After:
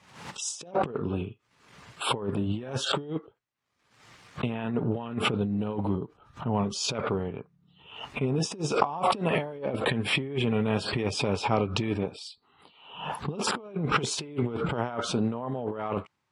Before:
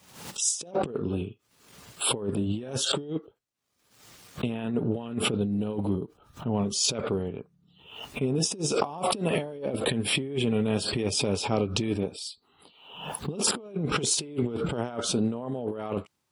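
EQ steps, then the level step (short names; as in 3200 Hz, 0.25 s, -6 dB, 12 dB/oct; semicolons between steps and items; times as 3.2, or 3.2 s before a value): ten-band EQ 125 Hz +4 dB, 1000 Hz +5 dB, 2000 Hz +6 dB; dynamic EQ 970 Hz, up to +3 dB, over -42 dBFS, Q 0.95; air absorption 66 m; -2.5 dB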